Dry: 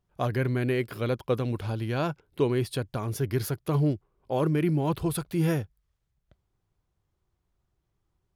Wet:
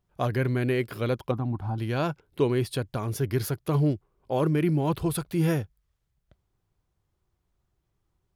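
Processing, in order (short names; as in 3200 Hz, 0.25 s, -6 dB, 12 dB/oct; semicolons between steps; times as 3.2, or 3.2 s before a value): 1.31–1.78 EQ curve 300 Hz 0 dB, 490 Hz -17 dB, 770 Hz +6 dB, 2500 Hz -18 dB; gain +1 dB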